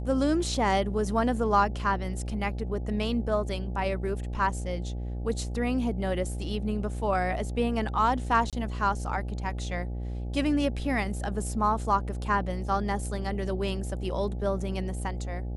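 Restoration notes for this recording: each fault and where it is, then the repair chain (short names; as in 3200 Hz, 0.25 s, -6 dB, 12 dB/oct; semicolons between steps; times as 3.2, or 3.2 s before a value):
buzz 60 Hz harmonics 14 -33 dBFS
8.5–8.53 gap 27 ms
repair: de-hum 60 Hz, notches 14; interpolate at 8.5, 27 ms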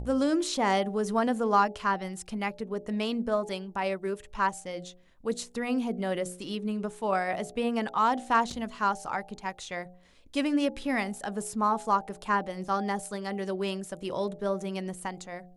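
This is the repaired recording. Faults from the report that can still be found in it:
none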